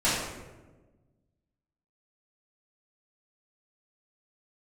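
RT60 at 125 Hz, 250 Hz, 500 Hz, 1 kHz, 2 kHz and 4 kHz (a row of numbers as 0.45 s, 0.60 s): 1.9 s, 1.7 s, 1.5 s, 1.0 s, 0.90 s, 0.65 s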